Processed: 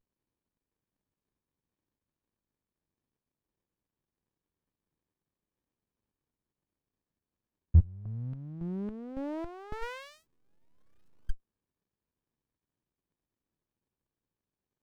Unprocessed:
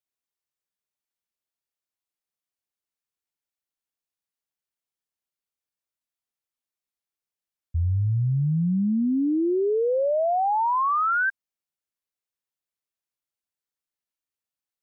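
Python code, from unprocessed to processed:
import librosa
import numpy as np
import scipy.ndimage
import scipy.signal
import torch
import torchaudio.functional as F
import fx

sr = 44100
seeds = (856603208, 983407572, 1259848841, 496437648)

y = fx.peak_eq(x, sr, hz=650.0, db=-8.0, octaves=2.8)
y = fx.filter_lfo_bandpass(y, sr, shape='square', hz=1.8, low_hz=710.0, high_hz=1500.0, q=1.7, at=(7.79, 9.81), fade=0.02)
y = fx.running_max(y, sr, window=65)
y = F.gain(torch.from_numpy(y), 8.5).numpy()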